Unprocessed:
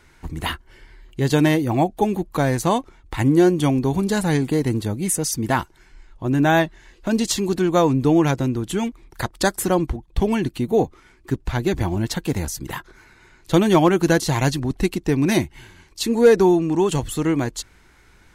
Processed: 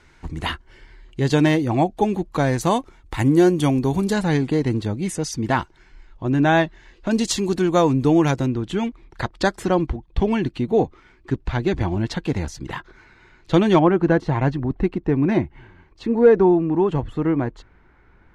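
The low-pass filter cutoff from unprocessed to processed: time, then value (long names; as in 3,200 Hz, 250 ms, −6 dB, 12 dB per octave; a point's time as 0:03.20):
6,900 Hz
from 0:02.61 12,000 Hz
from 0:04.13 5,100 Hz
from 0:07.11 8,900 Hz
from 0:08.46 4,200 Hz
from 0:13.79 1,600 Hz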